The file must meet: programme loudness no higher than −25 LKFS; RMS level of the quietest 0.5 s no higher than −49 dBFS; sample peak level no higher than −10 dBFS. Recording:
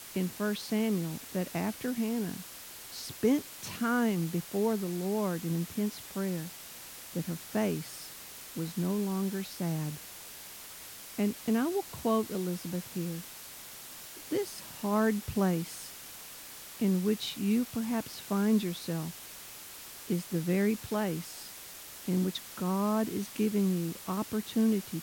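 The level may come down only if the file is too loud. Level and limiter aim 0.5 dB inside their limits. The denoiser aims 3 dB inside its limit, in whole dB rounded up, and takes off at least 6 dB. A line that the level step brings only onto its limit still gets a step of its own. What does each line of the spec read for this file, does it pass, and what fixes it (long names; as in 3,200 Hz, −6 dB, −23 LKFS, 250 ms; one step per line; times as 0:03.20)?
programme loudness −32.5 LKFS: in spec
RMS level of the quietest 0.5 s −47 dBFS: out of spec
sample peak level −15.0 dBFS: in spec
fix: broadband denoise 6 dB, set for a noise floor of −47 dBFS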